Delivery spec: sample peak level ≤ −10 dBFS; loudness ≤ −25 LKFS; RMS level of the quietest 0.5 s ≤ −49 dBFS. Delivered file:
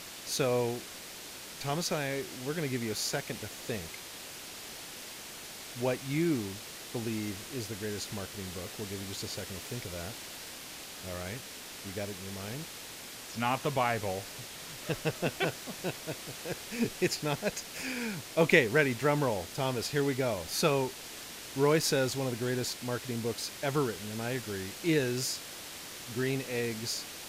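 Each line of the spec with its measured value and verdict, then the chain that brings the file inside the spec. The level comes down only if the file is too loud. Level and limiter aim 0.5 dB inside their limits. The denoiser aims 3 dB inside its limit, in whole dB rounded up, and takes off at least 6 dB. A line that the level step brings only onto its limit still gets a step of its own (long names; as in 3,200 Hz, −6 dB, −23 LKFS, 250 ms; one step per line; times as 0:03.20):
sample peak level −9.5 dBFS: out of spec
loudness −33.5 LKFS: in spec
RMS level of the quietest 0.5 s −45 dBFS: out of spec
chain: broadband denoise 7 dB, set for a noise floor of −45 dBFS
brickwall limiter −10.5 dBFS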